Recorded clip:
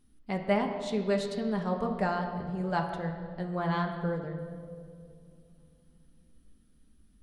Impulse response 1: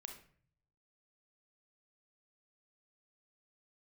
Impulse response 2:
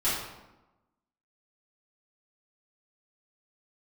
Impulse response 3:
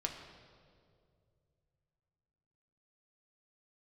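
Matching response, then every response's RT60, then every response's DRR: 3; 0.50, 1.0, 2.3 s; 4.0, -12.5, 1.5 dB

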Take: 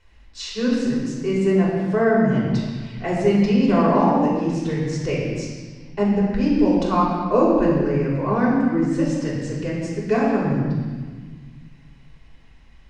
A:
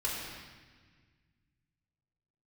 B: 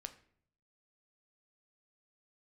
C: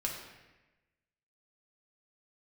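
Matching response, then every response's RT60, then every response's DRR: A; 1.5, 0.60, 1.1 s; -7.0, 8.0, -1.5 dB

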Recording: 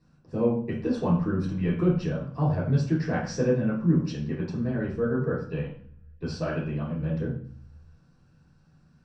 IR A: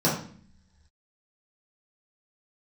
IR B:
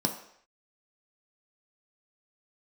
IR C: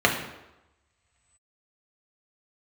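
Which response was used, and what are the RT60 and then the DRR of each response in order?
A; 0.50 s, not exponential, 0.95 s; -7.5, 2.5, -0.5 dB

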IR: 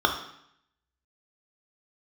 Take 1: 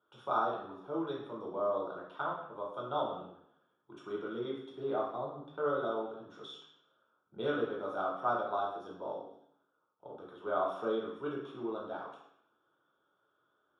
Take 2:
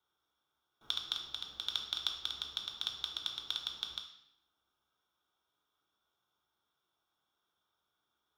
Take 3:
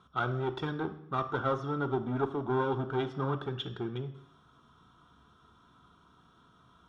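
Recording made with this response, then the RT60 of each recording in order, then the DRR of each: 2; 0.70, 0.70, 0.70 s; -4.5, 2.5, 8.5 dB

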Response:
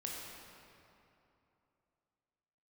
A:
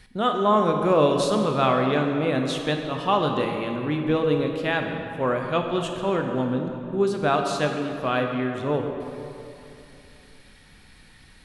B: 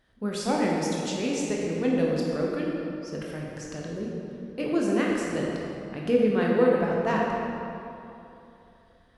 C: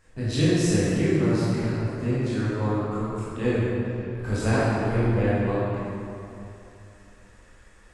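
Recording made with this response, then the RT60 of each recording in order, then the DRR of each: B; 2.9, 2.9, 2.9 s; 3.0, -3.0, -11.0 dB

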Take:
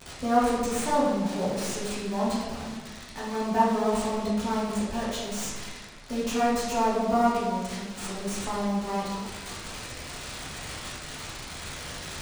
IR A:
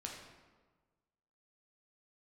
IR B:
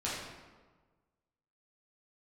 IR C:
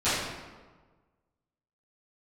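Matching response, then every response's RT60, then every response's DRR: B; 1.4, 1.4, 1.4 s; -1.0, -8.5, -17.0 dB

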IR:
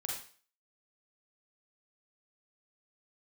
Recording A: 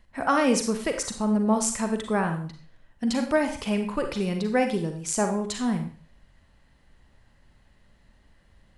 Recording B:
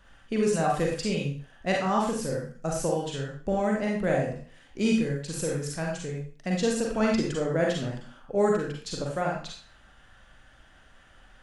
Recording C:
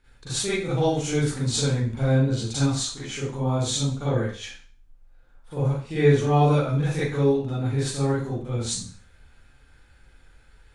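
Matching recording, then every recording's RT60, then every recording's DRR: B; 0.45, 0.45, 0.45 s; 5.5, -2.0, -11.5 dB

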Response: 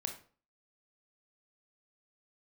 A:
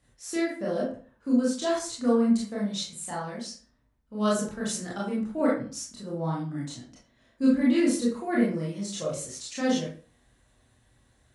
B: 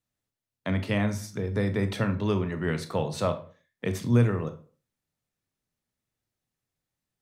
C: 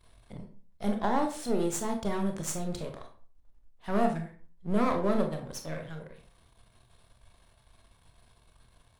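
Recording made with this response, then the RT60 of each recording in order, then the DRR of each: C; 0.40, 0.40, 0.40 s; -6.0, 8.5, 4.0 dB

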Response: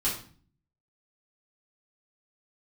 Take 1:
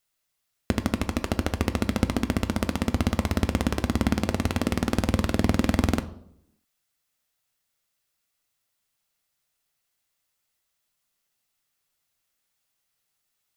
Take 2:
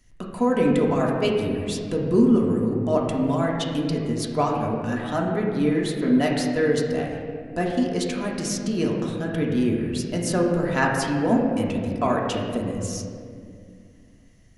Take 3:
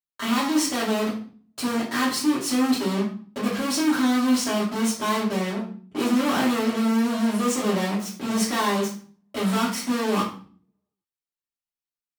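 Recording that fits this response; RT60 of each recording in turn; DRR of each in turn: 3; 0.70, 2.3, 0.45 s; 9.5, -2.5, -9.0 dB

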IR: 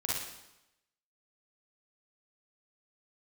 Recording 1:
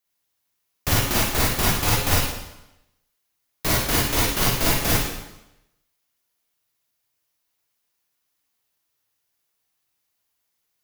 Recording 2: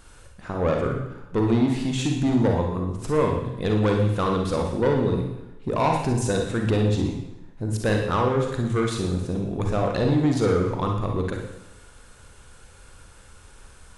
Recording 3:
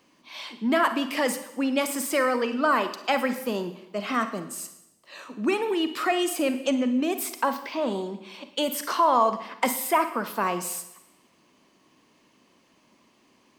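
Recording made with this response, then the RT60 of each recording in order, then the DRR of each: 1; 0.90, 0.90, 0.90 s; -5.5, 1.0, 9.5 dB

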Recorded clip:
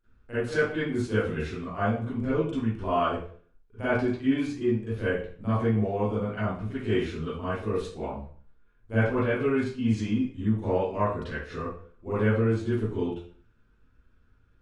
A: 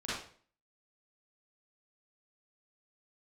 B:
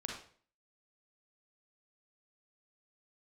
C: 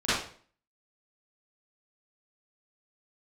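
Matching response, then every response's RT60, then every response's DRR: C; 0.50, 0.50, 0.50 s; -10.5, -0.5, -15.5 dB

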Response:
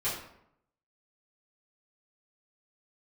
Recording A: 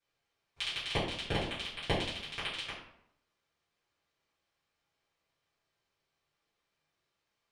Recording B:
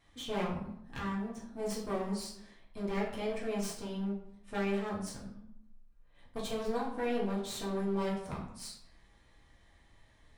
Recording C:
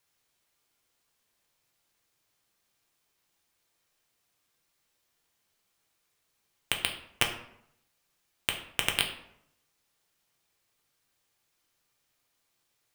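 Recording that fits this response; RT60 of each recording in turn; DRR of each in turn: A; 0.75, 0.75, 0.75 s; -12.5, -6.0, 2.0 dB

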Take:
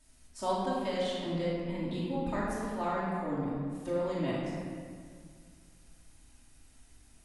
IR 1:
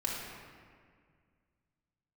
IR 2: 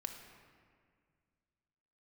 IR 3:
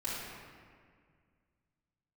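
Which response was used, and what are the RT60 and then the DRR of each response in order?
3; 1.9, 2.0, 1.9 s; -5.0, 4.0, -11.0 dB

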